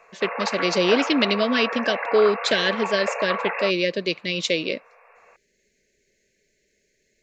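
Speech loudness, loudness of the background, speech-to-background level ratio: −22.5 LKFS, −28.0 LKFS, 5.5 dB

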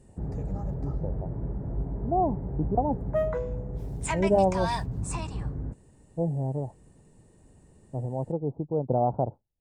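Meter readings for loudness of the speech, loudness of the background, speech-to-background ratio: −29.0 LKFS, −33.0 LKFS, 4.0 dB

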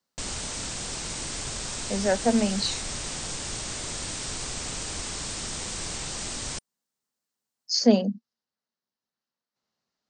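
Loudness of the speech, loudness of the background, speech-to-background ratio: −24.5 LKFS, −32.0 LKFS, 7.5 dB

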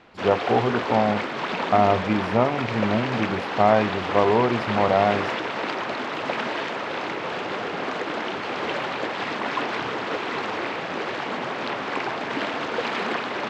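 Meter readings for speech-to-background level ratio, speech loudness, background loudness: 5.0 dB, −22.5 LKFS, −27.5 LKFS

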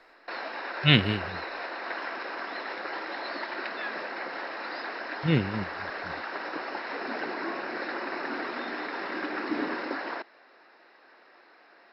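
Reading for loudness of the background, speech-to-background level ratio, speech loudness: −34.5 LKFS, 9.0 dB, −25.5 LKFS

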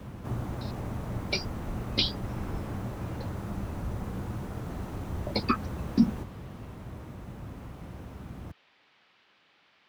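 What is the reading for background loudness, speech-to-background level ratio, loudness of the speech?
−37.5 LKFS, 7.5 dB, −30.0 LKFS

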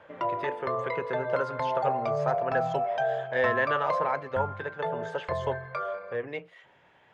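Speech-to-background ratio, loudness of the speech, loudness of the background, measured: −1.5 dB, −33.0 LKFS, −31.5 LKFS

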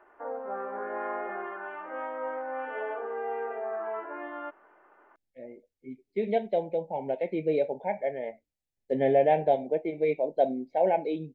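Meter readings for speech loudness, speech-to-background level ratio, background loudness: −28.0 LKFS, 7.5 dB, −35.5 LKFS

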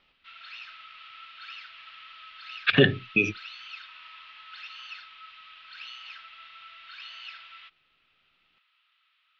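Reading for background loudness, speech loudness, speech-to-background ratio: −43.5 LKFS, −23.5 LKFS, 20.0 dB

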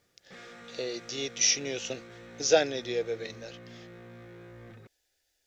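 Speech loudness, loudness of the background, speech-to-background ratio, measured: −29.0 LKFS, −49.0 LKFS, 20.0 dB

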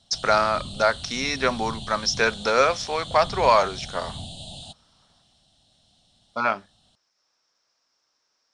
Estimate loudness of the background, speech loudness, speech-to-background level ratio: −36.5 LKFS, −23.0 LKFS, 13.5 dB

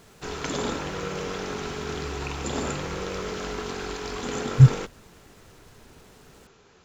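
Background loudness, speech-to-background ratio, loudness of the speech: −31.5 LKFS, 13.0 dB, −18.5 LKFS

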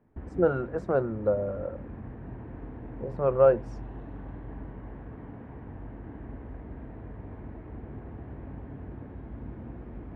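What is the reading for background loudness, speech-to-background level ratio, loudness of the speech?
−43.0 LKFS, 16.5 dB, −26.5 LKFS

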